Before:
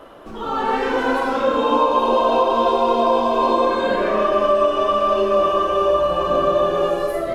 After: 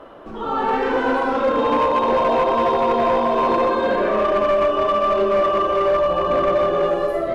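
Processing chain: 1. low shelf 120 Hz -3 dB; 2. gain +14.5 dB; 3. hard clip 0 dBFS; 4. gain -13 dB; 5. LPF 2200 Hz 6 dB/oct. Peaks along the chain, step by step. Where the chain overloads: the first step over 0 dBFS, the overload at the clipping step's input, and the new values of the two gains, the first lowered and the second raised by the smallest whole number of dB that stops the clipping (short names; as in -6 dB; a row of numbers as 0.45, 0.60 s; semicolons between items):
-4.5, +10.0, 0.0, -13.0, -13.0 dBFS; step 2, 10.0 dB; step 2 +4.5 dB, step 4 -3 dB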